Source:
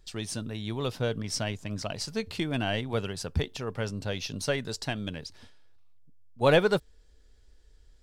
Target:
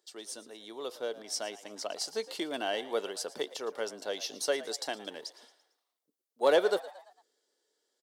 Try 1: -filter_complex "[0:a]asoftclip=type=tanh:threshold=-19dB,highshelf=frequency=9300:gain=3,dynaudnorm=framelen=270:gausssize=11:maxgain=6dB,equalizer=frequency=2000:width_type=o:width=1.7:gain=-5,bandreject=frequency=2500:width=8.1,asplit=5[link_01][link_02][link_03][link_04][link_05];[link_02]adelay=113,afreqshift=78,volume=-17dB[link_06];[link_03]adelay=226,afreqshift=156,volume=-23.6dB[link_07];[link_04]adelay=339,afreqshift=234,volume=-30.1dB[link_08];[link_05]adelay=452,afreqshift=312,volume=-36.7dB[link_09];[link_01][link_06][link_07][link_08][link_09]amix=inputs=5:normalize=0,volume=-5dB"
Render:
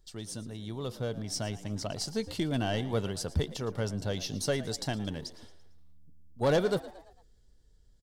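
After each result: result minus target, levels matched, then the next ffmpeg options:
soft clipping: distortion +13 dB; 250 Hz band +8.0 dB
-filter_complex "[0:a]asoftclip=type=tanh:threshold=-10dB,highshelf=frequency=9300:gain=3,dynaudnorm=framelen=270:gausssize=11:maxgain=6dB,equalizer=frequency=2000:width_type=o:width=1.7:gain=-5,bandreject=frequency=2500:width=8.1,asplit=5[link_01][link_02][link_03][link_04][link_05];[link_02]adelay=113,afreqshift=78,volume=-17dB[link_06];[link_03]adelay=226,afreqshift=156,volume=-23.6dB[link_07];[link_04]adelay=339,afreqshift=234,volume=-30.1dB[link_08];[link_05]adelay=452,afreqshift=312,volume=-36.7dB[link_09];[link_01][link_06][link_07][link_08][link_09]amix=inputs=5:normalize=0,volume=-5dB"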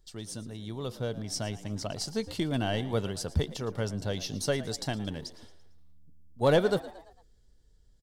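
250 Hz band +7.5 dB
-filter_complex "[0:a]asoftclip=type=tanh:threshold=-10dB,highpass=frequency=350:width=0.5412,highpass=frequency=350:width=1.3066,highshelf=frequency=9300:gain=3,dynaudnorm=framelen=270:gausssize=11:maxgain=6dB,equalizer=frequency=2000:width_type=o:width=1.7:gain=-5,bandreject=frequency=2500:width=8.1,asplit=5[link_01][link_02][link_03][link_04][link_05];[link_02]adelay=113,afreqshift=78,volume=-17dB[link_06];[link_03]adelay=226,afreqshift=156,volume=-23.6dB[link_07];[link_04]adelay=339,afreqshift=234,volume=-30.1dB[link_08];[link_05]adelay=452,afreqshift=312,volume=-36.7dB[link_09];[link_01][link_06][link_07][link_08][link_09]amix=inputs=5:normalize=0,volume=-5dB"

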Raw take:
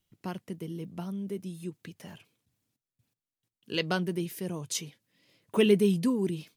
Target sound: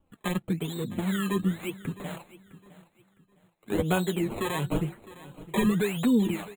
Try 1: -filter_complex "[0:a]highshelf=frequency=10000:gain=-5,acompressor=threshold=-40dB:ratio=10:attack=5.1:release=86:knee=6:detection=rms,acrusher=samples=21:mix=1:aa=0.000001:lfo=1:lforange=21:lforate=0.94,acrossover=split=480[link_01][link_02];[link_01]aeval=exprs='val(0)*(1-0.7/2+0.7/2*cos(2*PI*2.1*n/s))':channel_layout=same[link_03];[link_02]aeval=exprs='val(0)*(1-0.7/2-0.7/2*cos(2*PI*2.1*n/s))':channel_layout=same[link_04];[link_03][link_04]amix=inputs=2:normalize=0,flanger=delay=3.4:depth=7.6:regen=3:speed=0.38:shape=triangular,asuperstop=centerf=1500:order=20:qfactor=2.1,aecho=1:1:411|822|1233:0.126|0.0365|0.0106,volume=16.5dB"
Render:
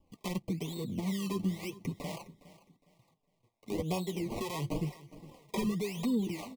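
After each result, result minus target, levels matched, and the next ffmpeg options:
downward compressor: peak gain reduction +8 dB; echo 248 ms early; 2,000 Hz band −4.0 dB
-filter_complex "[0:a]highshelf=frequency=10000:gain=-5,acompressor=threshold=-31dB:ratio=10:attack=5.1:release=86:knee=6:detection=rms,acrusher=samples=21:mix=1:aa=0.000001:lfo=1:lforange=21:lforate=0.94,acrossover=split=480[link_01][link_02];[link_01]aeval=exprs='val(0)*(1-0.7/2+0.7/2*cos(2*PI*2.1*n/s))':channel_layout=same[link_03];[link_02]aeval=exprs='val(0)*(1-0.7/2-0.7/2*cos(2*PI*2.1*n/s))':channel_layout=same[link_04];[link_03][link_04]amix=inputs=2:normalize=0,flanger=delay=3.4:depth=7.6:regen=3:speed=0.38:shape=triangular,asuperstop=centerf=1500:order=20:qfactor=2.1,aecho=1:1:411|822|1233:0.126|0.0365|0.0106,volume=16.5dB"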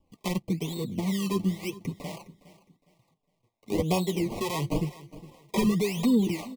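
echo 248 ms early; 2,000 Hz band −4.5 dB
-filter_complex "[0:a]highshelf=frequency=10000:gain=-5,acompressor=threshold=-31dB:ratio=10:attack=5.1:release=86:knee=6:detection=rms,acrusher=samples=21:mix=1:aa=0.000001:lfo=1:lforange=21:lforate=0.94,acrossover=split=480[link_01][link_02];[link_01]aeval=exprs='val(0)*(1-0.7/2+0.7/2*cos(2*PI*2.1*n/s))':channel_layout=same[link_03];[link_02]aeval=exprs='val(0)*(1-0.7/2-0.7/2*cos(2*PI*2.1*n/s))':channel_layout=same[link_04];[link_03][link_04]amix=inputs=2:normalize=0,flanger=delay=3.4:depth=7.6:regen=3:speed=0.38:shape=triangular,asuperstop=centerf=1500:order=20:qfactor=2.1,aecho=1:1:659|1318|1977:0.126|0.0365|0.0106,volume=16.5dB"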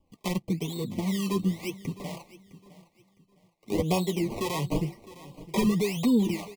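2,000 Hz band −4.0 dB
-filter_complex "[0:a]highshelf=frequency=10000:gain=-5,acompressor=threshold=-31dB:ratio=10:attack=5.1:release=86:knee=6:detection=rms,acrusher=samples=21:mix=1:aa=0.000001:lfo=1:lforange=21:lforate=0.94,acrossover=split=480[link_01][link_02];[link_01]aeval=exprs='val(0)*(1-0.7/2+0.7/2*cos(2*PI*2.1*n/s))':channel_layout=same[link_03];[link_02]aeval=exprs='val(0)*(1-0.7/2-0.7/2*cos(2*PI*2.1*n/s))':channel_layout=same[link_04];[link_03][link_04]amix=inputs=2:normalize=0,flanger=delay=3.4:depth=7.6:regen=3:speed=0.38:shape=triangular,asuperstop=centerf=5300:order=20:qfactor=2.1,aecho=1:1:659|1318|1977:0.126|0.0365|0.0106,volume=16.5dB"

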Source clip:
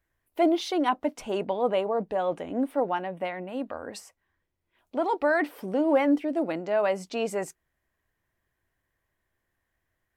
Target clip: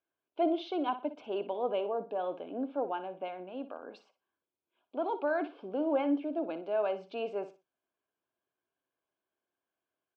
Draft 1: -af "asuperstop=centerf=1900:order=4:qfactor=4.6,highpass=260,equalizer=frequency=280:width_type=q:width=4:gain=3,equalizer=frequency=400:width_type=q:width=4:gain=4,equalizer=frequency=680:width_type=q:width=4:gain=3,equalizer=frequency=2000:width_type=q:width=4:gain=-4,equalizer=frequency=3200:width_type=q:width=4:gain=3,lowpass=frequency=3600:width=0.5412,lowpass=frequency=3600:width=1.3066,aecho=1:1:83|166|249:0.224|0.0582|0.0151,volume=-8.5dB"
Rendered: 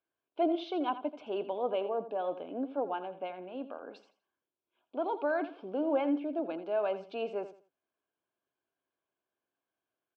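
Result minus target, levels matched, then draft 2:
echo 23 ms late
-af "asuperstop=centerf=1900:order=4:qfactor=4.6,highpass=260,equalizer=frequency=280:width_type=q:width=4:gain=3,equalizer=frequency=400:width_type=q:width=4:gain=4,equalizer=frequency=680:width_type=q:width=4:gain=3,equalizer=frequency=2000:width_type=q:width=4:gain=-4,equalizer=frequency=3200:width_type=q:width=4:gain=3,lowpass=frequency=3600:width=0.5412,lowpass=frequency=3600:width=1.3066,aecho=1:1:60|120|180:0.224|0.0582|0.0151,volume=-8.5dB"

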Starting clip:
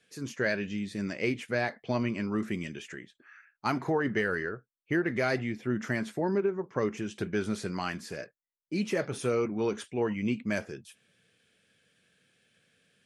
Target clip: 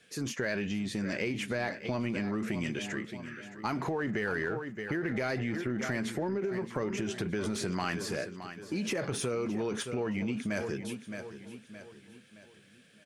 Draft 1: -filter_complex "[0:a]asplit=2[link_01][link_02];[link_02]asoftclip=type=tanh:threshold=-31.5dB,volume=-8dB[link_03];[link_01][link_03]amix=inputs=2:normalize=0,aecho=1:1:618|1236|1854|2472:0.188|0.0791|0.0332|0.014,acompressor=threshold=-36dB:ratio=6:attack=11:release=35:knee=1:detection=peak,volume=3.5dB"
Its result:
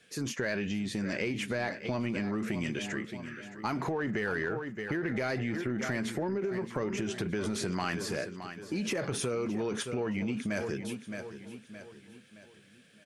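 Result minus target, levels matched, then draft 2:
soft clipping: distortion −5 dB
-filter_complex "[0:a]asplit=2[link_01][link_02];[link_02]asoftclip=type=tanh:threshold=-41.5dB,volume=-8dB[link_03];[link_01][link_03]amix=inputs=2:normalize=0,aecho=1:1:618|1236|1854|2472:0.188|0.0791|0.0332|0.014,acompressor=threshold=-36dB:ratio=6:attack=11:release=35:knee=1:detection=peak,volume=3.5dB"

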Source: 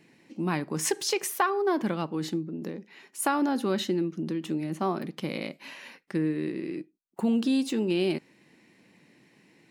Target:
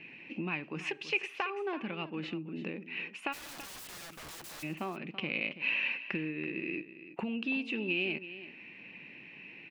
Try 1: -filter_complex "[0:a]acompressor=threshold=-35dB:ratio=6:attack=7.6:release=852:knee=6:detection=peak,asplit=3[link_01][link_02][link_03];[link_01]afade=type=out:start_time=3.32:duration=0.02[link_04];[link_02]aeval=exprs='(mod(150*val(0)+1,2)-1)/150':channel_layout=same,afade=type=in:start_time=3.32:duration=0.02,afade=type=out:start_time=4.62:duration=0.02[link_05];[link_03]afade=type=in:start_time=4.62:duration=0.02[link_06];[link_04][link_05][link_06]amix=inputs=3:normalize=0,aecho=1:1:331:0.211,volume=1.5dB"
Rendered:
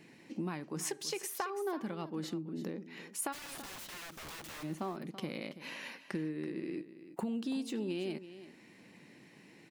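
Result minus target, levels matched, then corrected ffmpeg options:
2,000 Hz band −8.5 dB
-filter_complex "[0:a]acompressor=threshold=-35dB:ratio=6:attack=7.6:release=852:knee=6:detection=peak,lowpass=frequency=2600:width_type=q:width=12,asplit=3[link_01][link_02][link_03];[link_01]afade=type=out:start_time=3.32:duration=0.02[link_04];[link_02]aeval=exprs='(mod(150*val(0)+1,2)-1)/150':channel_layout=same,afade=type=in:start_time=3.32:duration=0.02,afade=type=out:start_time=4.62:duration=0.02[link_05];[link_03]afade=type=in:start_time=4.62:duration=0.02[link_06];[link_04][link_05][link_06]amix=inputs=3:normalize=0,aecho=1:1:331:0.211,volume=1.5dB"

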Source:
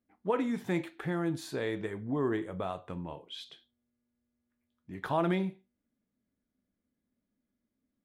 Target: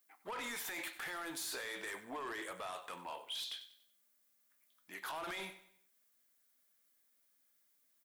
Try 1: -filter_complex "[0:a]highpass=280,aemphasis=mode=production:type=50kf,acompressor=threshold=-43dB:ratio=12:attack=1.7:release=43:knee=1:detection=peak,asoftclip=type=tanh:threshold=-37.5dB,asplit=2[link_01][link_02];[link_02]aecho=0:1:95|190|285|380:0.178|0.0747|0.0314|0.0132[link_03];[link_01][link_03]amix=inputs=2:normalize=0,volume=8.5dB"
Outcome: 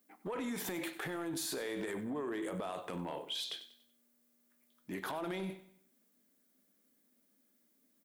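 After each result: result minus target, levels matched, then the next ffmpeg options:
250 Hz band +9.5 dB; soft clipping: distortion −12 dB
-filter_complex "[0:a]highpass=970,aemphasis=mode=production:type=50kf,acompressor=threshold=-43dB:ratio=12:attack=1.7:release=43:knee=1:detection=peak,asoftclip=type=tanh:threshold=-37.5dB,asplit=2[link_01][link_02];[link_02]aecho=0:1:95|190|285|380:0.178|0.0747|0.0314|0.0132[link_03];[link_01][link_03]amix=inputs=2:normalize=0,volume=8.5dB"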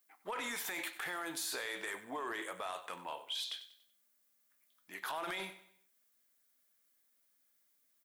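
soft clipping: distortion −10 dB
-filter_complex "[0:a]highpass=970,aemphasis=mode=production:type=50kf,acompressor=threshold=-43dB:ratio=12:attack=1.7:release=43:knee=1:detection=peak,asoftclip=type=tanh:threshold=-46dB,asplit=2[link_01][link_02];[link_02]aecho=0:1:95|190|285|380:0.178|0.0747|0.0314|0.0132[link_03];[link_01][link_03]amix=inputs=2:normalize=0,volume=8.5dB"

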